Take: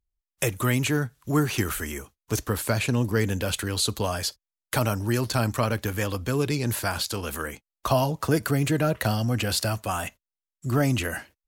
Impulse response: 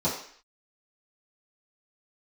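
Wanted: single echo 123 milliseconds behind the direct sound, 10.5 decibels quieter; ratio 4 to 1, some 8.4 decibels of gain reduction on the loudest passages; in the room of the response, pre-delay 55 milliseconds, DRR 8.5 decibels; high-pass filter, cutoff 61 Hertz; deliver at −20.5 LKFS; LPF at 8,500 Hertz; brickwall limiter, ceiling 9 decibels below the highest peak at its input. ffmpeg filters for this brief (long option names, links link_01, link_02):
-filter_complex "[0:a]highpass=61,lowpass=8500,acompressor=threshold=-28dB:ratio=4,alimiter=limit=-22.5dB:level=0:latency=1,aecho=1:1:123:0.299,asplit=2[link_01][link_02];[1:a]atrim=start_sample=2205,adelay=55[link_03];[link_02][link_03]afir=irnorm=-1:irlink=0,volume=-19.5dB[link_04];[link_01][link_04]amix=inputs=2:normalize=0,volume=12dB"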